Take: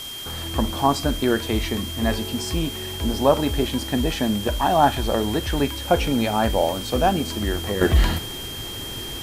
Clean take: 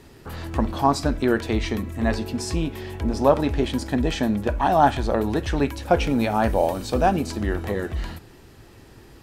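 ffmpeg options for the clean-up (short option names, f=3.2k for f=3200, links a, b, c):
-af "bandreject=f=3.2k:w=30,afwtdn=0.013,asetnsamples=n=441:p=0,asendcmd='7.81 volume volume -11.5dB',volume=0dB"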